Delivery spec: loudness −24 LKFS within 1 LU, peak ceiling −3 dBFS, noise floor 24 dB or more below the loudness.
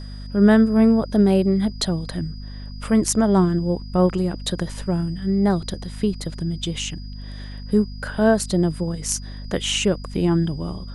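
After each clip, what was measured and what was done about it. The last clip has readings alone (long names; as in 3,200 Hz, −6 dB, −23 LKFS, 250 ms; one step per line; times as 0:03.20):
mains hum 50 Hz; hum harmonics up to 250 Hz; level of the hum −32 dBFS; interfering tone 4,900 Hz; level of the tone −45 dBFS; integrated loudness −21.0 LKFS; sample peak −4.0 dBFS; target loudness −24.0 LKFS
→ hum removal 50 Hz, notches 5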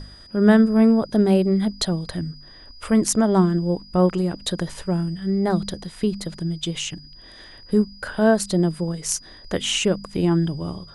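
mains hum none found; interfering tone 4,900 Hz; level of the tone −45 dBFS
→ notch filter 4,900 Hz, Q 30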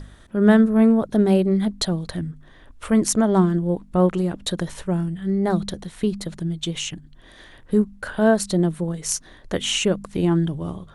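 interfering tone none found; integrated loudness −21.5 LKFS; sample peak −4.0 dBFS; target loudness −24.0 LKFS
→ level −2.5 dB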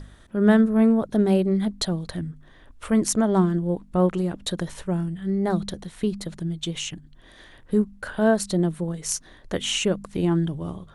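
integrated loudness −24.0 LKFS; sample peak −6.5 dBFS; background noise floor −51 dBFS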